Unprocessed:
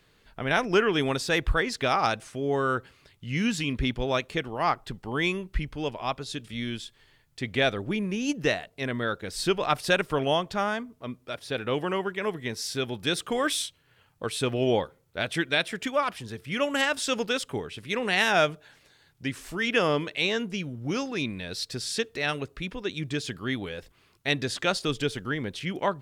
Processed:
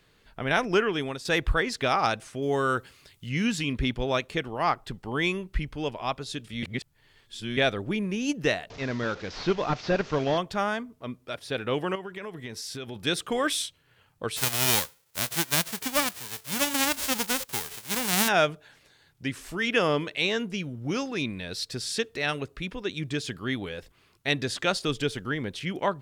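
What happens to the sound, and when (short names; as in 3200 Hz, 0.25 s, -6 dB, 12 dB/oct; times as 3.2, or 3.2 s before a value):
0.68–1.25 fade out, to -10.5 dB
2.42–3.29 high shelf 4200 Hz +10.5 dB
6.63–7.57 reverse
8.7–10.38 delta modulation 32 kbps, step -37.5 dBFS
11.95–12.96 compressor, threshold -33 dBFS
14.36–18.27 spectral whitening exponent 0.1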